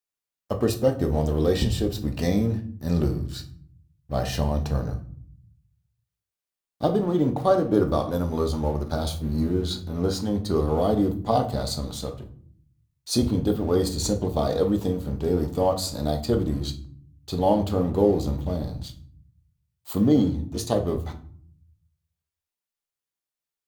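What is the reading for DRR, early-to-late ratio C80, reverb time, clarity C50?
5.0 dB, 17.5 dB, 0.55 s, 12.5 dB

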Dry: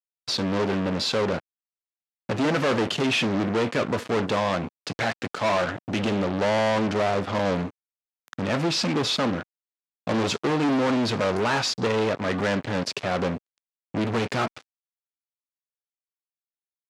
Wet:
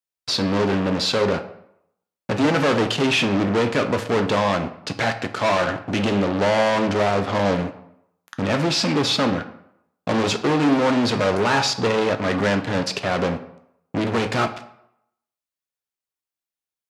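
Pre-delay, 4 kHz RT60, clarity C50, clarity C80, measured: 5 ms, 0.50 s, 12.5 dB, 15.0 dB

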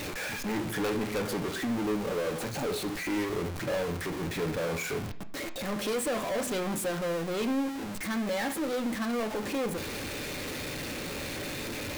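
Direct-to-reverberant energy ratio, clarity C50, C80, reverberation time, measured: 7.0 dB, 14.0 dB, 18.5 dB, 0.45 s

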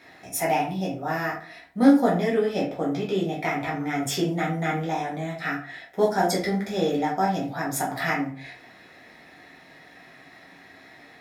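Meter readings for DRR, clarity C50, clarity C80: −4.5 dB, 8.0 dB, 12.5 dB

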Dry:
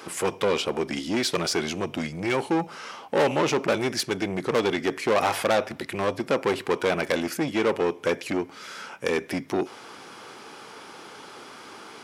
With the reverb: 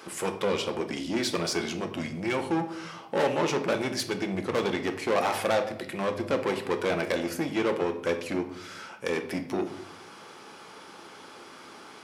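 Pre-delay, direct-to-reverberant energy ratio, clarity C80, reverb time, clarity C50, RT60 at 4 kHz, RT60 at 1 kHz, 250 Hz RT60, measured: 3 ms, 6.0 dB, 14.0 dB, 0.75 s, 11.0 dB, 0.50 s, 0.70 s, 1.1 s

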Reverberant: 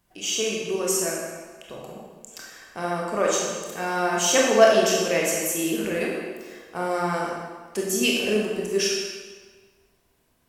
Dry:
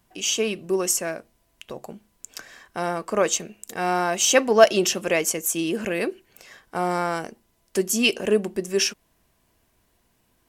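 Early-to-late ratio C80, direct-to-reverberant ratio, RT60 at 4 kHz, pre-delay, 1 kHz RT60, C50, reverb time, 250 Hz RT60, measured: 2.0 dB, −3.0 dB, 1.2 s, 21 ms, 1.5 s, 0.0 dB, 1.5 s, 1.4 s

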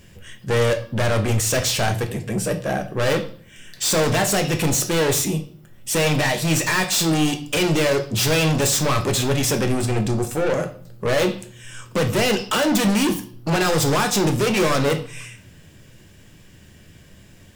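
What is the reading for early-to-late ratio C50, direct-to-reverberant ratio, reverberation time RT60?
12.5 dB, 5.5 dB, 0.45 s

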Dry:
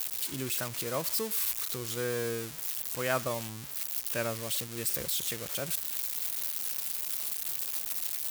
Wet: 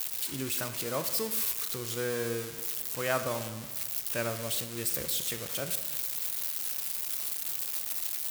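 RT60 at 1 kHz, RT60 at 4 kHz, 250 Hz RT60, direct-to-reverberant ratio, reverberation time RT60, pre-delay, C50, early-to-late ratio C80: 1.4 s, 1.0 s, 1.6 s, 9.0 dB, 1.4 s, 20 ms, 10.5 dB, 12.0 dB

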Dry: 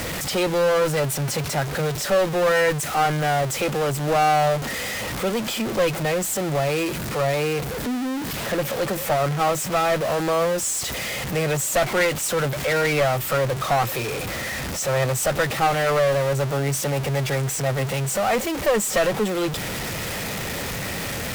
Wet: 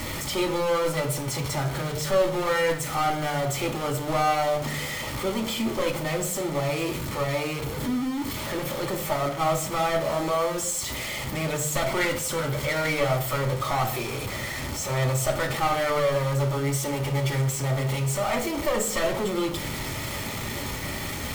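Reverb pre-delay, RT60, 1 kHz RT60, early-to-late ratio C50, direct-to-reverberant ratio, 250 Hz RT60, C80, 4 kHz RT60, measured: 3 ms, 0.60 s, 0.60 s, 9.5 dB, 2.0 dB, 0.85 s, 13.5 dB, 0.40 s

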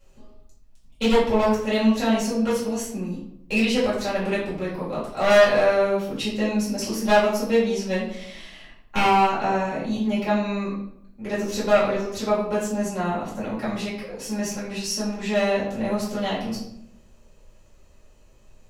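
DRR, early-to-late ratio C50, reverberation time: −9.5 dB, 3.5 dB, 0.70 s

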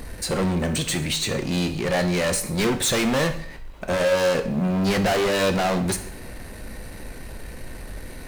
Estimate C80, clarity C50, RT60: 15.5 dB, 11.5 dB, 0.55 s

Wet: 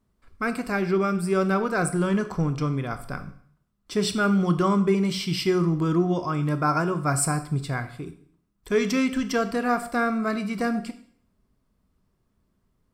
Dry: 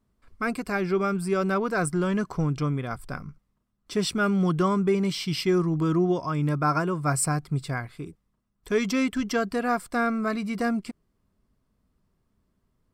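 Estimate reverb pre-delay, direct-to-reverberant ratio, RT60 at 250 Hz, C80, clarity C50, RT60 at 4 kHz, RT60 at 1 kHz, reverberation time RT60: 19 ms, 9.5 dB, 0.60 s, 15.5 dB, 13.0 dB, 0.55 s, 0.60 s, 0.60 s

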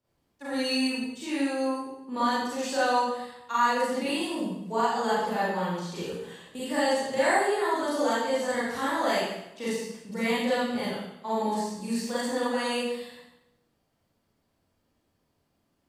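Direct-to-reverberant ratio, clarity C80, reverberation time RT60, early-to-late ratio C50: −10.5 dB, 2.0 dB, 0.85 s, −2.5 dB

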